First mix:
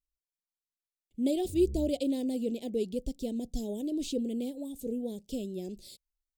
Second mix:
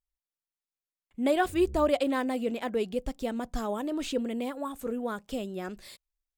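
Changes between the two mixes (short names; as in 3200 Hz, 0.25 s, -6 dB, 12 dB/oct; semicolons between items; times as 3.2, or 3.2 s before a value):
background -4.0 dB; master: remove Chebyshev band-stop 400–4200 Hz, order 2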